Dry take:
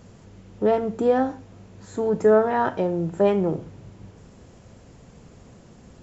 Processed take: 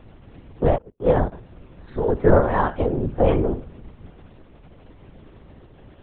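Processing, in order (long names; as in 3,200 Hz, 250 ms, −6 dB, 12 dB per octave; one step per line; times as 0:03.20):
0:00.76–0:01.32: noise gate −22 dBFS, range −40 dB
amplitude modulation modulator 46 Hz, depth 95%
linear-prediction vocoder at 8 kHz whisper
level +6 dB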